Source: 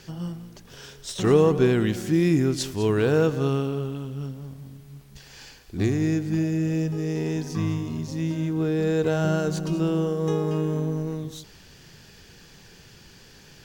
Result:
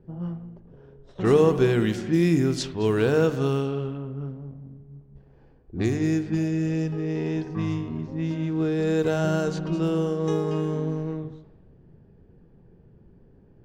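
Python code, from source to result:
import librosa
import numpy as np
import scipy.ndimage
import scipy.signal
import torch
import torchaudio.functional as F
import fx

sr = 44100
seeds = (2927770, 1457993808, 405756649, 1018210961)

y = fx.hum_notches(x, sr, base_hz=50, count=6)
y = fx.env_lowpass(y, sr, base_hz=380.0, full_db=-19.0)
y = fx.rev_spring(y, sr, rt60_s=1.1, pass_ms=(41,), chirp_ms=70, drr_db=14.0)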